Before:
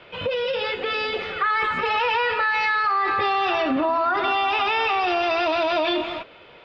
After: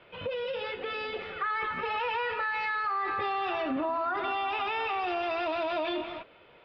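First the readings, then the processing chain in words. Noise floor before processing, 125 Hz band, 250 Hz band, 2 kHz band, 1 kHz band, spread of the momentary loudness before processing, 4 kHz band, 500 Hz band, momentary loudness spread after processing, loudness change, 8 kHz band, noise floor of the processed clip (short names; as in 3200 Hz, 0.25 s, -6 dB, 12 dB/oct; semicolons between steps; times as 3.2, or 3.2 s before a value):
-47 dBFS, -8.0 dB, -8.5 dB, -9.5 dB, -9.0 dB, 5 LU, -11.5 dB, -8.5 dB, 5 LU, -9.0 dB, n/a, -57 dBFS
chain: air absorption 160 m; gain -8 dB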